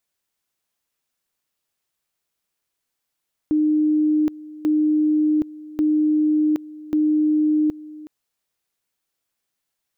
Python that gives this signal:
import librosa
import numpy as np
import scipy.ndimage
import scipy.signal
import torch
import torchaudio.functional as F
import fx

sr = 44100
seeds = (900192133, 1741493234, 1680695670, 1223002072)

y = fx.two_level_tone(sr, hz=305.0, level_db=-15.0, drop_db=19.5, high_s=0.77, low_s=0.37, rounds=4)